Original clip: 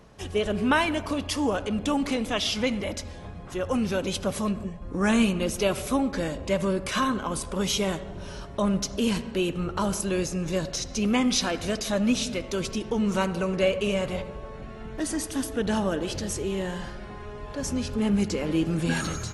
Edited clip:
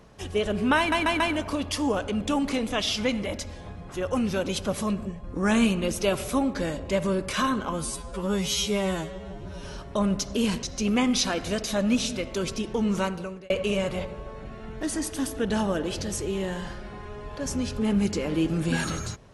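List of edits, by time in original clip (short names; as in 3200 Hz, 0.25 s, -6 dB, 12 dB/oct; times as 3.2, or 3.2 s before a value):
0.78 stutter 0.14 s, 4 plays
7.31–8.26 stretch 2×
9.26–10.8 cut
13.11–13.67 fade out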